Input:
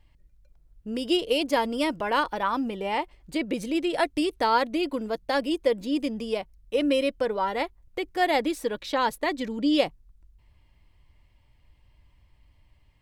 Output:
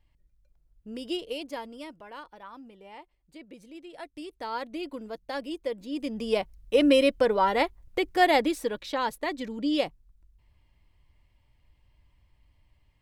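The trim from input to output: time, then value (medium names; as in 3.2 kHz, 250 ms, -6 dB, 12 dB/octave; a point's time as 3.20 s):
1.08 s -7.5 dB
2.14 s -19 dB
3.89 s -19 dB
4.78 s -8.5 dB
5.87 s -8.5 dB
6.38 s +3.5 dB
8.14 s +3.5 dB
8.98 s -4 dB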